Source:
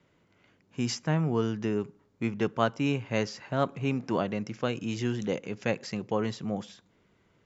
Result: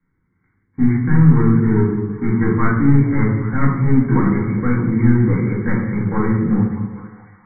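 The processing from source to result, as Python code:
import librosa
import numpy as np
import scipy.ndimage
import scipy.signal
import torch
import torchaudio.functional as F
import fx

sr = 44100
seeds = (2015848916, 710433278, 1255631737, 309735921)

p1 = fx.low_shelf(x, sr, hz=110.0, db=8.0)
p2 = fx.leveller(p1, sr, passes=3)
p3 = fx.brickwall_lowpass(p2, sr, high_hz=2300.0)
p4 = fx.fixed_phaser(p3, sr, hz=1500.0, stages=4)
p5 = p4 + fx.echo_stepped(p4, sr, ms=205, hz=300.0, octaves=0.7, feedback_pct=70, wet_db=-8.0, dry=0)
p6 = fx.room_shoebox(p5, sr, seeds[0], volume_m3=260.0, walls='mixed', distance_m=2.2)
y = p6 * 10.0 ** (-3.0 / 20.0)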